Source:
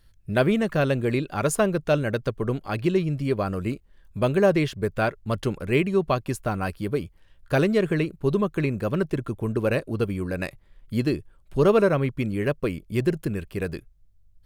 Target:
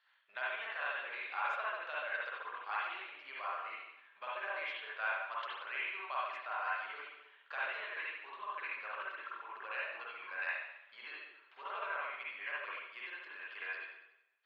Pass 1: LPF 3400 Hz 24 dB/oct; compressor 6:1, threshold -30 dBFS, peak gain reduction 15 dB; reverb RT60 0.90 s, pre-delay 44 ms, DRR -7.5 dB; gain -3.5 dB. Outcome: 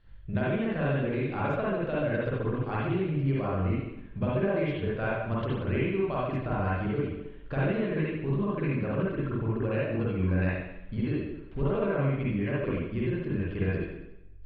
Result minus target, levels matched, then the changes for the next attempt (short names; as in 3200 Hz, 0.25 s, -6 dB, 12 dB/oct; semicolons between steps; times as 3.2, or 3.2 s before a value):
1000 Hz band -7.5 dB
add after compressor: HPF 940 Hz 24 dB/oct